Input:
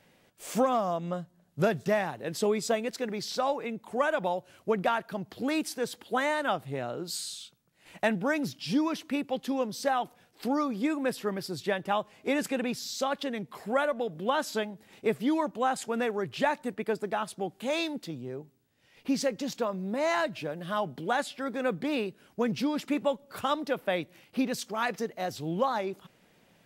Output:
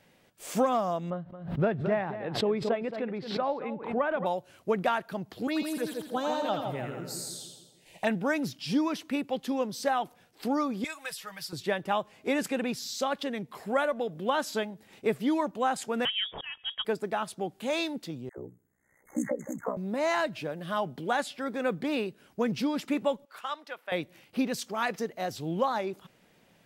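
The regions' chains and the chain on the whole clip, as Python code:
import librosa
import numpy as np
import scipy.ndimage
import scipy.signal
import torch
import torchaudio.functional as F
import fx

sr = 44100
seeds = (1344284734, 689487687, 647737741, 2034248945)

y = fx.chain(x, sr, fx.air_absorb(metres=430.0),
    fx.echo_single(ms=222, db=-12.0),
    fx.pre_swell(db_per_s=88.0), at=(1.1, 4.26))
y = fx.chain(y, sr, fx.env_phaser(low_hz=200.0, high_hz=2000.0, full_db=-25.0),
    fx.echo_split(split_hz=870.0, low_ms=150, high_ms=83, feedback_pct=52, wet_db=-4), at=(5.47, 8.07))
y = fx.chain(y, sr, fx.tone_stack(knobs='10-0-10'),
    fx.comb(ms=6.3, depth=0.86),
    fx.band_squash(depth_pct=70), at=(10.84, 11.53))
y = fx.chain(y, sr, fx.auto_swell(attack_ms=340.0),
    fx.freq_invert(carrier_hz=3500), at=(16.05, 16.85))
y = fx.chain(y, sr, fx.dispersion(late='lows', ms=89.0, hz=680.0),
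    fx.ring_mod(carrier_hz=31.0),
    fx.brickwall_bandstop(low_hz=2200.0, high_hz=6200.0), at=(18.29, 19.77))
y = fx.chain(y, sr, fx.highpass(hz=1300.0, slope=12),
    fx.tilt_eq(slope=-3.0), at=(23.25, 23.92))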